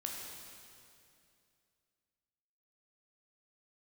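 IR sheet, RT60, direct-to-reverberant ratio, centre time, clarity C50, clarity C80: 2.5 s, -1.0 dB, 105 ms, 1.0 dB, 2.0 dB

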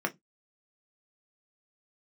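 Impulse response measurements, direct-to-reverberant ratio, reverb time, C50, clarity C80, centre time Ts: 3.0 dB, no single decay rate, 23.5 dB, 37.0 dB, 7 ms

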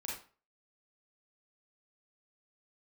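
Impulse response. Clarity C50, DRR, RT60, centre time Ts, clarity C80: 1.5 dB, -4.5 dB, 0.40 s, 45 ms, 8.0 dB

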